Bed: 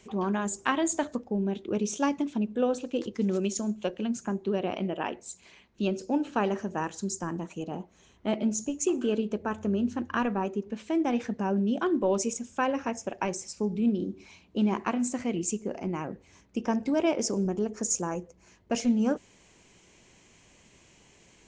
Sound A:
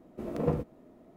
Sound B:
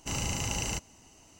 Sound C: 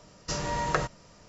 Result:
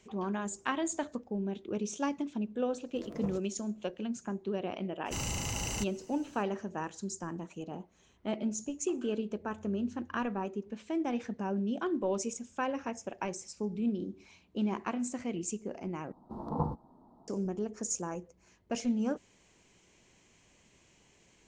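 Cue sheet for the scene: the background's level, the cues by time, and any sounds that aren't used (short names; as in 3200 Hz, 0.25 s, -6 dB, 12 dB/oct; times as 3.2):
bed -6 dB
2.76 add A -11.5 dB
5.05 add B -1.5 dB, fades 0.02 s + soft clip -25.5 dBFS
16.12 replace with A -2.5 dB + EQ curve 220 Hz 0 dB, 370 Hz -6 dB, 620 Hz -7 dB, 880 Hz +14 dB, 2300 Hz -27 dB, 4200 Hz -5 dB, 7400 Hz -16 dB
not used: C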